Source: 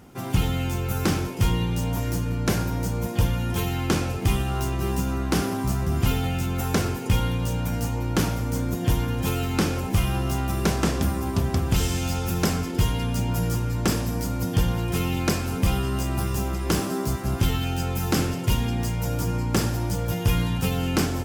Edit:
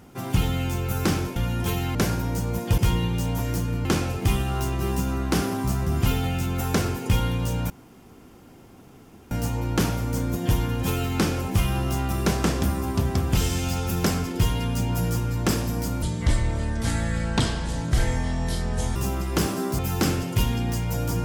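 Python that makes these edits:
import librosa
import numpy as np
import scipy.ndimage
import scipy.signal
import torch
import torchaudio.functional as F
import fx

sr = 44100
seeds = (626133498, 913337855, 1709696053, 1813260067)

y = fx.edit(x, sr, fx.swap(start_s=1.36, length_s=1.07, other_s=3.26, other_length_s=0.59),
    fx.insert_room_tone(at_s=7.7, length_s=1.61),
    fx.speed_span(start_s=14.41, length_s=1.88, speed=0.64),
    fx.cut(start_s=17.12, length_s=0.78), tone=tone)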